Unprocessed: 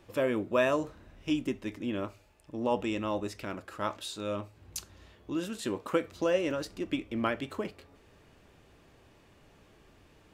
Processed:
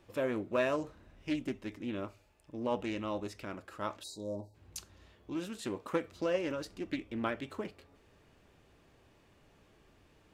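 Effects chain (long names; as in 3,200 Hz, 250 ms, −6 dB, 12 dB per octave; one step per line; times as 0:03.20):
time-frequency box erased 0:04.04–0:04.55, 990–3,800 Hz
highs frequency-modulated by the lows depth 0.2 ms
level −4.5 dB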